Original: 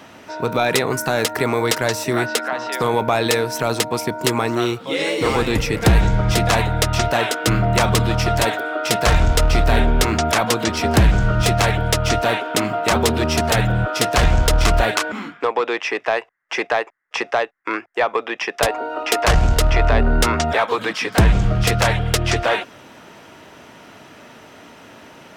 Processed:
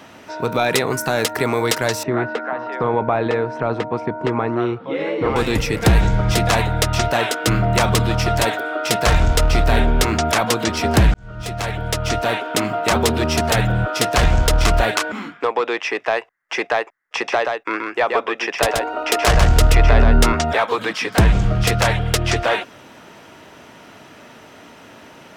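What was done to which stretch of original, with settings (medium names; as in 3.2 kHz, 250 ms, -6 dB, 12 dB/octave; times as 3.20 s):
2.03–5.36 s: low-pass 1.6 kHz
11.14–12.92 s: fade in equal-power
17.15–20.33 s: delay 128 ms -4 dB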